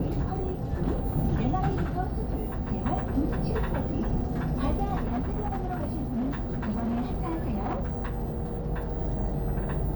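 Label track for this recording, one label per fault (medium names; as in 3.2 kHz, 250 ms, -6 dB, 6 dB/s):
5.050000	8.700000	clipped -25.5 dBFS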